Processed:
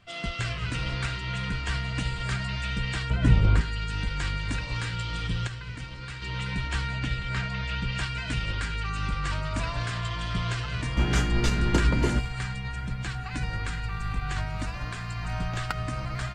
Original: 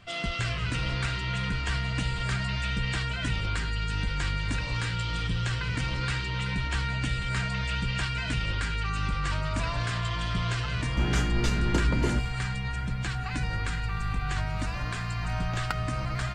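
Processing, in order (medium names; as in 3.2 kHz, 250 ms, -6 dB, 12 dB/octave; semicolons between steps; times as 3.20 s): 3.10–3.61 s: tilt shelf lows +8 dB, about 1.1 kHz; 5.47–6.22 s: feedback comb 60 Hz, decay 1.8 s, harmonics all, mix 50%; 6.99–7.92 s: low-pass 5.4 kHz 12 dB/octave; upward expansion 1.5:1, over -38 dBFS; trim +4.5 dB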